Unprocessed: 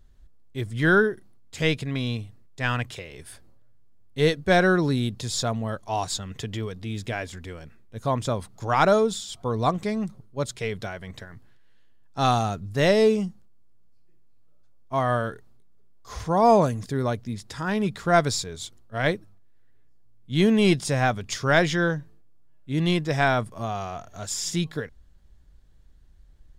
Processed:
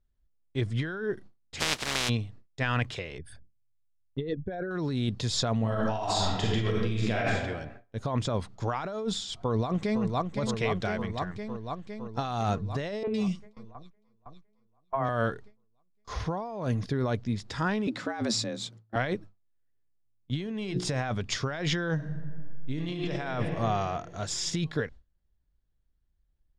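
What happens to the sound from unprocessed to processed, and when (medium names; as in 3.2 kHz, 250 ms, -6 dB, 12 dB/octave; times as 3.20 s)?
1.59–2.08 s: spectral contrast reduction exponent 0.12
3.18–4.71 s: resonances exaggerated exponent 2
5.59–7.32 s: reverb throw, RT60 1.1 s, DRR -4 dB
9.42–10.03 s: echo throw 510 ms, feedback 75%, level -7.5 dB
13.03–15.09 s: three bands offset in time mids, lows, highs 40/110 ms, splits 460/2100 Hz
16.13–17.06 s: peaking EQ 7.6 kHz -11 dB 0.28 oct
17.87–18.96 s: frequency shift +110 Hz
20.44–21.09 s: hum notches 60/120/180/240/300/360/420/480 Hz
21.94–23.19 s: reverb throw, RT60 2 s, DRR 0 dB
whole clip: gate with hold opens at -38 dBFS; low-pass 5.4 kHz 12 dB/octave; compressor with a negative ratio -27 dBFS, ratio -1; trim -2 dB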